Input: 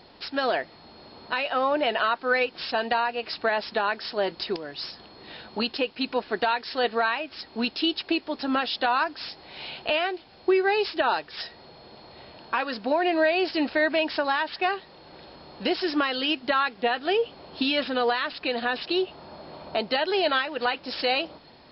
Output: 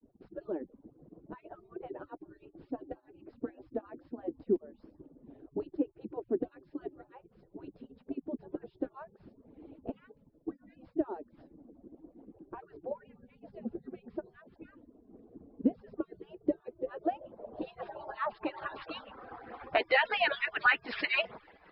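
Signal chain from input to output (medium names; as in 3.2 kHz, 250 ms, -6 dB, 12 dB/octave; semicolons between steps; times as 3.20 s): harmonic-percussive separation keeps percussive; expander -52 dBFS; low-pass sweep 300 Hz -> 2 kHz, 16.14–19.83 s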